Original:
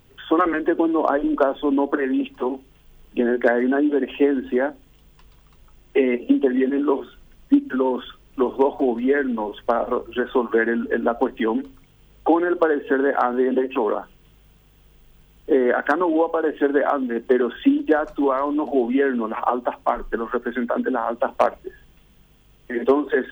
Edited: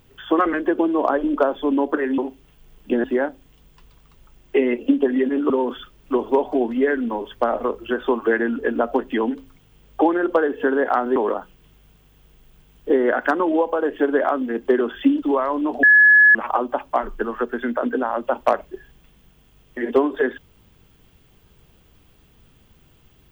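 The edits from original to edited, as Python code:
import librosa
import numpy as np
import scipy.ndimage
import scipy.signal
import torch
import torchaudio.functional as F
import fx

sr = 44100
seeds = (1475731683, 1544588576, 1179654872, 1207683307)

y = fx.edit(x, sr, fx.cut(start_s=2.18, length_s=0.27),
    fx.cut(start_s=3.31, length_s=1.14),
    fx.cut(start_s=6.91, length_s=0.86),
    fx.cut(start_s=13.43, length_s=0.34),
    fx.cut(start_s=17.83, length_s=0.32),
    fx.bleep(start_s=18.76, length_s=0.52, hz=1700.0, db=-8.0), tone=tone)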